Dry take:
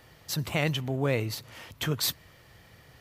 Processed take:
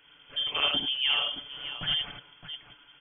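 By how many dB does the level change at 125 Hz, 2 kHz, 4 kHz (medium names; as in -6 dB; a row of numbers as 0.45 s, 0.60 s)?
-19.0 dB, +1.5 dB, +9.5 dB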